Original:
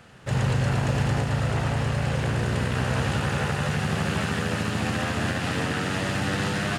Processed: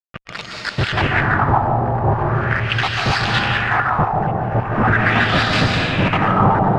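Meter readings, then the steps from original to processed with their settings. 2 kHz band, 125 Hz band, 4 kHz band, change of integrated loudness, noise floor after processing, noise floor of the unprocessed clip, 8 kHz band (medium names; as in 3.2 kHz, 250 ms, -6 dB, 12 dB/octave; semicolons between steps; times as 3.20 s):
+11.0 dB, +5.0 dB, +9.5 dB, +8.5 dB, -34 dBFS, -29 dBFS, -3.0 dB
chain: random holes in the spectrogram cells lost 83%; peaking EQ 110 Hz +4 dB 0.58 oct; whistle 1.2 kHz -52 dBFS; in parallel at 0 dB: decimation with a swept rate 11×, swing 60% 3.2 Hz; on the sum: bass shelf 480 Hz +5 dB; fuzz box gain 33 dB, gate -35 dBFS; echo whose repeats swap between lows and highs 144 ms, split 2.2 kHz, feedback 56%, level -7 dB; algorithmic reverb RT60 2.9 s, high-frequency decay 0.85×, pre-delay 110 ms, DRR -2 dB; LFO low-pass sine 0.4 Hz 720–4400 Hz; trim -2 dB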